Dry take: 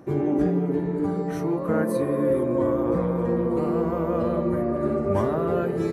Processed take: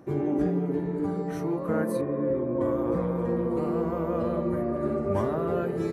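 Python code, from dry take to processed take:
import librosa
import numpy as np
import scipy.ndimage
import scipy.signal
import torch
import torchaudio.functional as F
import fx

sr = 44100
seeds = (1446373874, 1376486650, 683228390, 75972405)

y = fx.spacing_loss(x, sr, db_at_10k=30, at=(2.01, 2.61))
y = y * 10.0 ** (-3.5 / 20.0)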